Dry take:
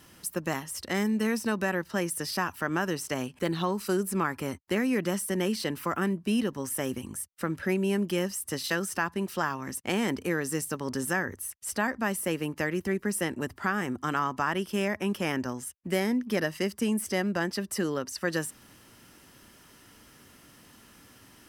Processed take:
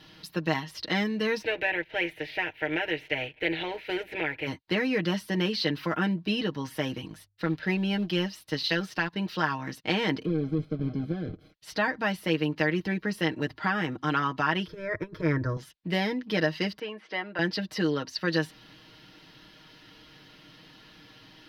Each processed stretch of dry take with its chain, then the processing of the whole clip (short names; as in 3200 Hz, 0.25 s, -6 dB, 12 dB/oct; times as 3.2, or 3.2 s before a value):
1.41–4.46 spectral contrast lowered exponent 0.66 + resonant high shelf 3300 Hz -13.5 dB, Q 3 + fixed phaser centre 480 Hz, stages 4
7.07–9.13 G.711 law mismatch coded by A + de-hum 49.86 Hz, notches 2
10.25–11.54 half-waves squared off + compressor 2.5:1, threshold -26 dBFS + running mean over 48 samples
14.67–15.57 tone controls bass +14 dB, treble -11 dB + negative-ratio compressor -23 dBFS, ratio -0.5 + fixed phaser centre 780 Hz, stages 6
16.79–17.39 BPF 320–2200 Hz + low shelf 410 Hz -9.5 dB
whole clip: resonant high shelf 5900 Hz -14 dB, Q 3; notch 1200 Hz, Q 10; comb 6.4 ms, depth 73%